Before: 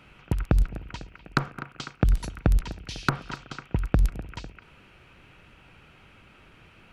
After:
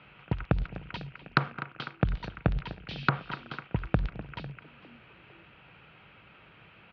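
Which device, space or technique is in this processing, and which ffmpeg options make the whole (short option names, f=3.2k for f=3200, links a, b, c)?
frequency-shifting delay pedal into a guitar cabinet: -filter_complex "[0:a]lowpass=f=5.3k:w=0.5412,lowpass=f=5.3k:w=1.3066,asettb=1/sr,asplit=3[a][b][c];[a]atrim=end=0.634[d];[b]atrim=start=0.63:end=1.66,asetpts=PTS-STARTPTS,afade=t=in:d=0.004:c=qsin,afade=t=out:st=1.026:d=0.004:c=qsin,highshelf=f=4.8k:g=11.5[e];[c]atrim=start=1.656[f];[d][e]acrossfade=d=0.004:c1=hsin:c2=qsin[g];[g][f]acrossfade=d=0.004:c1=qsin:c2=hsin,asplit=4[h][i][j][k];[i]adelay=452,afreqshift=96,volume=-22dB[l];[j]adelay=904,afreqshift=192,volume=-30.4dB[m];[k]adelay=1356,afreqshift=288,volume=-38.8dB[n];[h][l][m][n]amix=inputs=4:normalize=0,highpass=81,equalizer=f=84:t=q:w=4:g=-8,equalizer=f=250:t=q:w=4:g=-7,equalizer=f=360:t=q:w=4:g=-4,lowpass=f=3.8k:w=0.5412,lowpass=f=3.8k:w=1.3066"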